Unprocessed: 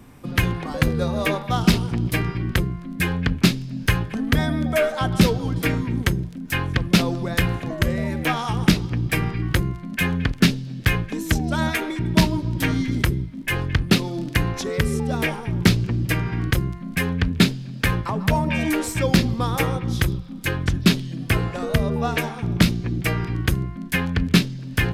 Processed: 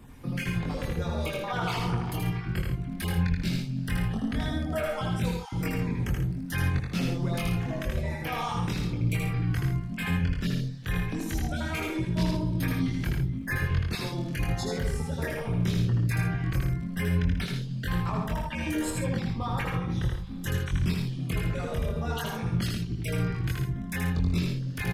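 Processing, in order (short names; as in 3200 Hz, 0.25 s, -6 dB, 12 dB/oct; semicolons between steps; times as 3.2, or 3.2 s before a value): random spectral dropouts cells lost 25%; 1.39–2.12 bell 990 Hz +13.5 dB 2.8 oct; 18.9–20.15 LPF 2400 Hz 6 dB/oct; in parallel at -3 dB: vocal rider 0.5 s; on the sum: limiter -12.5 dBFS, peak gain reduction 13 dB; chorus voices 6, 0.15 Hz, delay 23 ms, depth 1.3 ms; on a send: loudspeakers at several distances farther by 27 m -3 dB, 47 m -9 dB; on the sum: gain -7.5 dB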